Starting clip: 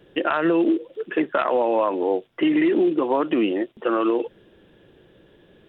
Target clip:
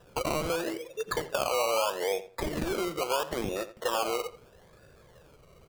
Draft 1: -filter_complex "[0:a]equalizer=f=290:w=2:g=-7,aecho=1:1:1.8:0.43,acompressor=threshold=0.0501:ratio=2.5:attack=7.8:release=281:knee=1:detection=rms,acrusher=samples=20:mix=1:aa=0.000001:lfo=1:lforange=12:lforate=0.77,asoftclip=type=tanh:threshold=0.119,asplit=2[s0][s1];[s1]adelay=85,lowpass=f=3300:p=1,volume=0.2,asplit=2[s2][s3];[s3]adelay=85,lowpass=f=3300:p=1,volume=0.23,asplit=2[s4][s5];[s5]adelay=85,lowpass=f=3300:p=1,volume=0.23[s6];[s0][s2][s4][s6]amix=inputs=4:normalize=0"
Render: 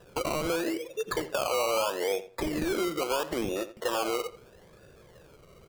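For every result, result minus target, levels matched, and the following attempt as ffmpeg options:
saturation: distortion +12 dB; 250 Hz band +3.0 dB
-filter_complex "[0:a]equalizer=f=290:w=2:g=-7,aecho=1:1:1.8:0.43,acompressor=threshold=0.0501:ratio=2.5:attack=7.8:release=281:knee=1:detection=rms,acrusher=samples=20:mix=1:aa=0.000001:lfo=1:lforange=12:lforate=0.77,asoftclip=type=tanh:threshold=0.266,asplit=2[s0][s1];[s1]adelay=85,lowpass=f=3300:p=1,volume=0.2,asplit=2[s2][s3];[s3]adelay=85,lowpass=f=3300:p=1,volume=0.23,asplit=2[s4][s5];[s5]adelay=85,lowpass=f=3300:p=1,volume=0.23[s6];[s0][s2][s4][s6]amix=inputs=4:normalize=0"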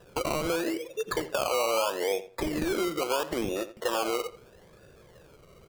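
250 Hz band +3.0 dB
-filter_complex "[0:a]equalizer=f=290:w=2:g=-17.5,aecho=1:1:1.8:0.43,acompressor=threshold=0.0501:ratio=2.5:attack=7.8:release=281:knee=1:detection=rms,acrusher=samples=20:mix=1:aa=0.000001:lfo=1:lforange=12:lforate=0.77,asoftclip=type=tanh:threshold=0.266,asplit=2[s0][s1];[s1]adelay=85,lowpass=f=3300:p=1,volume=0.2,asplit=2[s2][s3];[s3]adelay=85,lowpass=f=3300:p=1,volume=0.23,asplit=2[s4][s5];[s5]adelay=85,lowpass=f=3300:p=1,volume=0.23[s6];[s0][s2][s4][s6]amix=inputs=4:normalize=0"

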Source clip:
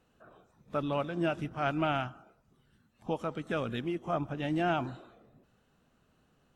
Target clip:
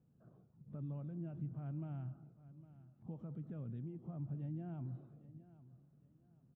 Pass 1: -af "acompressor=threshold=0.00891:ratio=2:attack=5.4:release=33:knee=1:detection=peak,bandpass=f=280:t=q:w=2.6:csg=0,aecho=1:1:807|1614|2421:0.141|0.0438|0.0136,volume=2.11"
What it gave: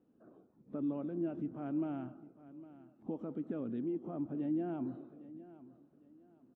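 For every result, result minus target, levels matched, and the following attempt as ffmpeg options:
125 Hz band -13.0 dB; compression: peak gain reduction -4 dB
-af "acompressor=threshold=0.00891:ratio=2:attack=5.4:release=33:knee=1:detection=peak,bandpass=f=140:t=q:w=2.6:csg=0,aecho=1:1:807|1614|2421:0.141|0.0438|0.0136,volume=2.11"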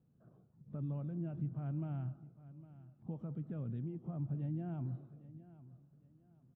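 compression: peak gain reduction -4 dB
-af "acompressor=threshold=0.00335:ratio=2:attack=5.4:release=33:knee=1:detection=peak,bandpass=f=140:t=q:w=2.6:csg=0,aecho=1:1:807|1614|2421:0.141|0.0438|0.0136,volume=2.11"

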